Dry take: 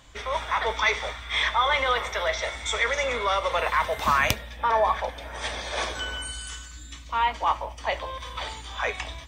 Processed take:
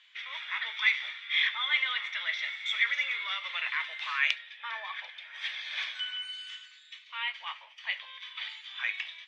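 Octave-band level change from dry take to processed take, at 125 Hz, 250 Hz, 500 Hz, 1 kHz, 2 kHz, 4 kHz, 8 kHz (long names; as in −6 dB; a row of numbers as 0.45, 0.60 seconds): below −40 dB, below −40 dB, −30.5 dB, −17.5 dB, −2.0 dB, −1.5 dB, below −15 dB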